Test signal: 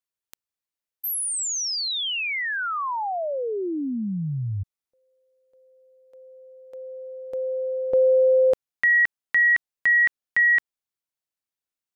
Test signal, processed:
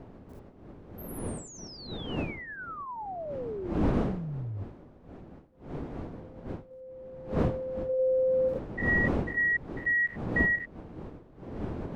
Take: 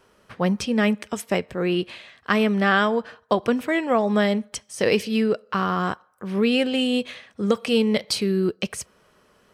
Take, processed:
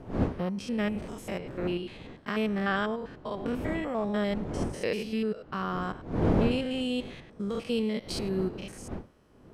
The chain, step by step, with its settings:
spectrum averaged block by block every 100 ms
wind on the microphone 350 Hz −28 dBFS
level −8 dB

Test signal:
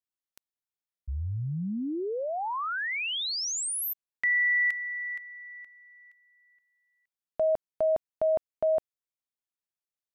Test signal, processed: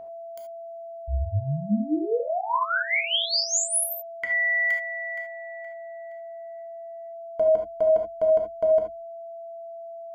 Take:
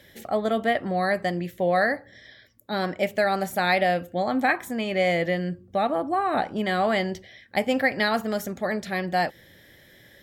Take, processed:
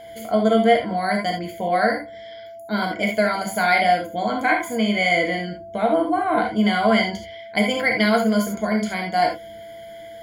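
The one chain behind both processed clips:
EQ curve with evenly spaced ripples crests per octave 1.8, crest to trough 17 dB
steady tone 670 Hz −37 dBFS
reverb whose tail is shaped and stops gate 100 ms flat, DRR 1 dB

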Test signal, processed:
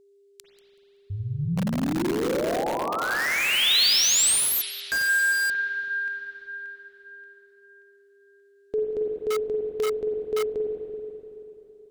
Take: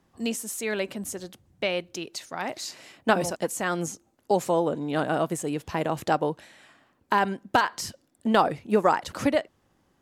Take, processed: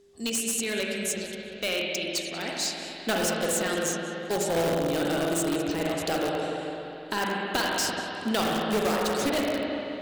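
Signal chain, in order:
graphic EQ with 10 bands 125 Hz −6 dB, 1,000 Hz −9 dB, 4,000 Hz +7 dB, 8,000 Hz +8 dB
feedback echo with a high-pass in the loop 189 ms, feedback 19%, high-pass 390 Hz, level −18.5 dB
spring reverb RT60 3.2 s, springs 42/48/54 ms, chirp 45 ms, DRR −2 dB
in parallel at −5.5 dB: wrap-around overflow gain 17.5 dB
on the sum: steady tone 400 Hz −50 dBFS
level −5.5 dB

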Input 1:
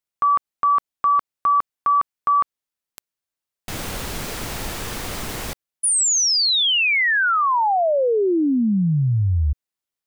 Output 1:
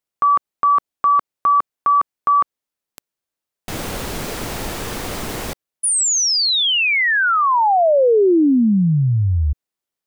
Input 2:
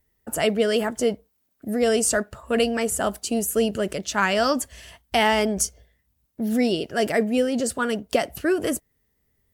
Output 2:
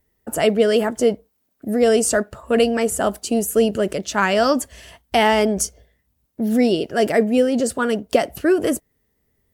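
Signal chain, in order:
parametric band 400 Hz +4.5 dB 2.6 octaves
level +1 dB

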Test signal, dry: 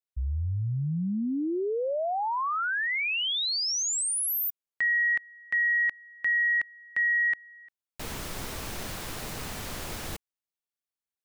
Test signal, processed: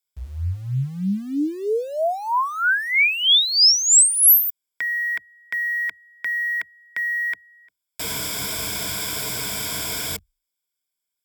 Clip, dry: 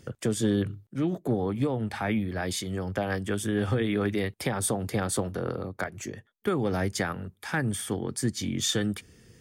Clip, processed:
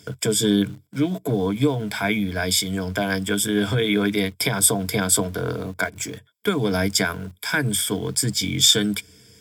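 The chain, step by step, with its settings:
EQ curve with evenly spaced ripples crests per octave 1.7, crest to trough 13 dB
in parallel at −10.5 dB: centre clipping without the shift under −38.5 dBFS
on the sum: high-pass filter 76 Hz 12 dB per octave
high-shelf EQ 2,200 Hz +10 dB

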